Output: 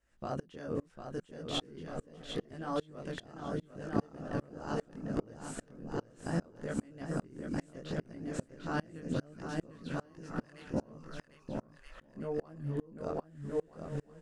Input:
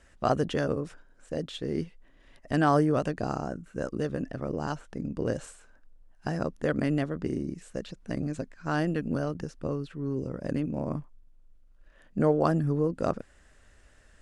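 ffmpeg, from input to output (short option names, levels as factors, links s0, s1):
-filter_complex "[0:a]asettb=1/sr,asplit=3[s0][s1][s2];[s0]atrim=end=9.704[s3];[s1]atrim=start=9.7:end=10.74,asetpts=PTS-STARTPTS,afade=t=in:d=0.004:c=qsin,afade=t=out:st=1.036:d=0.004:c=qsin,highpass=f=960:w=0.5412,highpass=f=960:w=1.3066[s4];[s2]atrim=start=10.736[s5];[s3][s4]acrossfade=d=0.004:c1=hsin:c2=qsin[s6];[s6][s5]acrossfade=d=0.004:c1=qsin:c2=hsin,acompressor=threshold=0.0178:ratio=10,flanger=delay=17.5:depth=7.8:speed=0.73,aecho=1:1:750|1275|1642|1900|2080:0.631|0.398|0.251|0.158|0.1,aeval=exprs='val(0)*pow(10,-31*if(lt(mod(-2.5*n/s,1),2*abs(-2.5)/1000),1-mod(-2.5*n/s,1)/(2*abs(-2.5)/1000),(mod(-2.5*n/s,1)-2*abs(-2.5)/1000)/(1-2*abs(-2.5)/1000))/20)':c=same,volume=3.98"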